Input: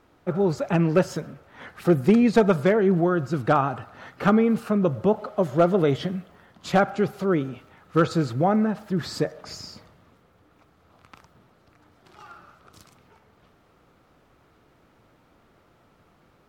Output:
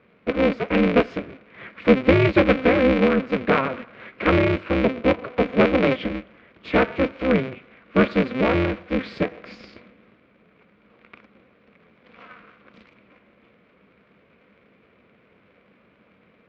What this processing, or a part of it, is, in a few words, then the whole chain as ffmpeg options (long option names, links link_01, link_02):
ring modulator pedal into a guitar cabinet: -af "aeval=exprs='val(0)*sgn(sin(2*PI*130*n/s))':channel_layout=same,highpass=82,equalizer=frequency=200:width_type=q:width=4:gain=9,equalizer=frequency=490:width_type=q:width=4:gain=6,equalizer=frequency=840:width_type=q:width=4:gain=-8,equalizer=frequency=2300:width_type=q:width=4:gain=10,lowpass=frequency=3500:width=0.5412,lowpass=frequency=3500:width=1.3066"